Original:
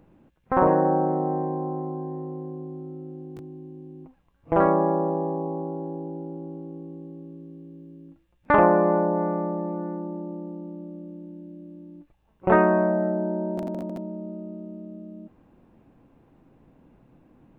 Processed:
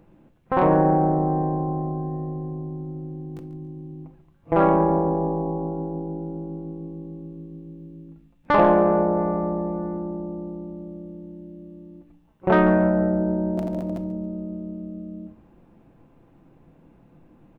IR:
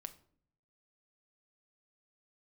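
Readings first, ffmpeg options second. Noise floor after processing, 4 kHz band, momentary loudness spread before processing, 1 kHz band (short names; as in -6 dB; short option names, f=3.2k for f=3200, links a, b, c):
-57 dBFS, n/a, 22 LU, +1.0 dB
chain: -filter_complex "[0:a]acontrast=62,asplit=4[a][b][c][d];[b]adelay=140,afreqshift=-120,volume=-15dB[e];[c]adelay=280,afreqshift=-240,volume=-25.2dB[f];[d]adelay=420,afreqshift=-360,volume=-35.3dB[g];[a][e][f][g]amix=inputs=4:normalize=0[h];[1:a]atrim=start_sample=2205[i];[h][i]afir=irnorm=-1:irlink=0"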